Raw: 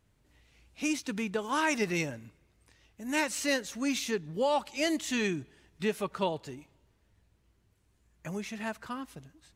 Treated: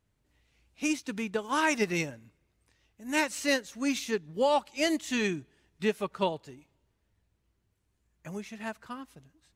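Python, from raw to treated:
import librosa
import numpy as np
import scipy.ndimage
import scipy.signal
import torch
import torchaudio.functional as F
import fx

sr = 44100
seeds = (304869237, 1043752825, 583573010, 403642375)

y = fx.upward_expand(x, sr, threshold_db=-43.0, expansion=1.5)
y = F.gain(torch.from_numpy(y), 3.0).numpy()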